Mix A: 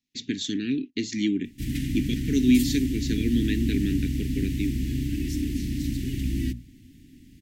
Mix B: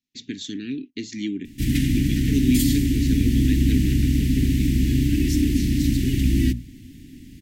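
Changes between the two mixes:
speech -3.0 dB; background +8.0 dB

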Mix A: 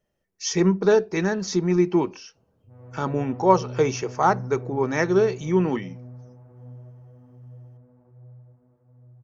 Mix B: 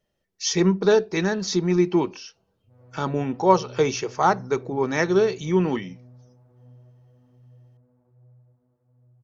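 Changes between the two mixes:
background -7.5 dB; master: add bell 3800 Hz +7 dB 0.82 oct

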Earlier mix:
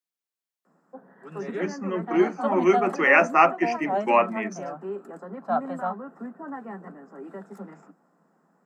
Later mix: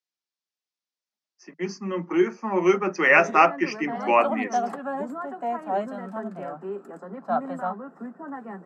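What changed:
speech: add synth low-pass 5300 Hz, resonance Q 1.9; background: entry +1.80 s

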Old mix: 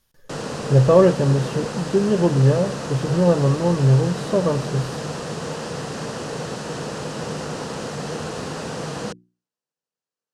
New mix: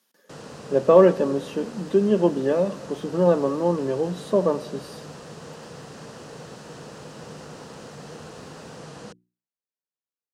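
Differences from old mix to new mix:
speech: add steep high-pass 190 Hz 48 dB/oct; background -11.5 dB

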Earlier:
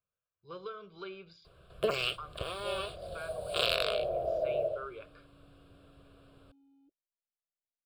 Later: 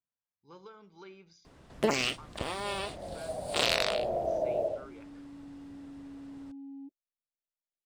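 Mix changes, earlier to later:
speech -10.0 dB; master: remove fixed phaser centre 1300 Hz, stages 8

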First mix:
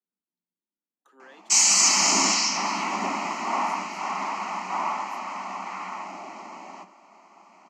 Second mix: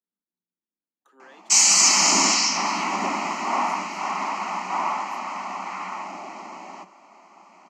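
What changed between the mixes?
background +3.5 dB; reverb: off

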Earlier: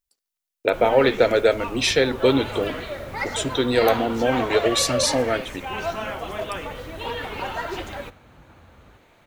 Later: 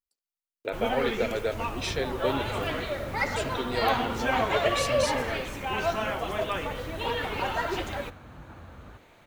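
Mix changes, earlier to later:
speech -12.0 dB; second sound +5.0 dB

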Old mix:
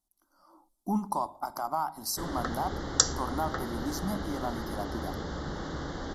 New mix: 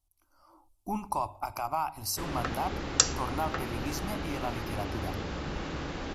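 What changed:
speech: add resonant low shelf 140 Hz +10 dB, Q 3; master: remove Butterworth band-stop 2500 Hz, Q 1.9

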